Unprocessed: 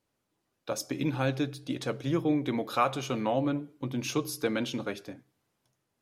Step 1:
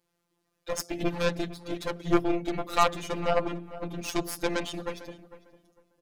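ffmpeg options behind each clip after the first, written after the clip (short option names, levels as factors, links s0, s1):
-filter_complex "[0:a]afftfilt=real='hypot(re,im)*cos(PI*b)':imag='0':win_size=1024:overlap=0.75,aeval=exprs='0.224*(cos(1*acos(clip(val(0)/0.224,-1,1)))-cos(1*PI/2))+0.0355*(cos(8*acos(clip(val(0)/0.224,-1,1)))-cos(8*PI/2))':c=same,asplit=2[s0][s1];[s1]adelay=451,lowpass=f=1700:p=1,volume=0.178,asplit=2[s2][s3];[s3]adelay=451,lowpass=f=1700:p=1,volume=0.24,asplit=2[s4][s5];[s5]adelay=451,lowpass=f=1700:p=1,volume=0.24[s6];[s0][s2][s4][s6]amix=inputs=4:normalize=0,volume=1.88"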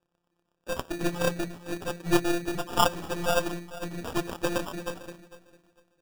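-af "acrusher=samples=21:mix=1:aa=0.000001"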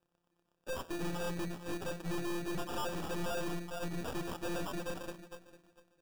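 -af "aeval=exprs='(tanh(70.8*val(0)+0.65)-tanh(0.65))/70.8':c=same,volume=1.19"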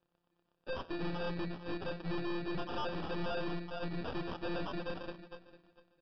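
-af "aresample=11025,aresample=44100"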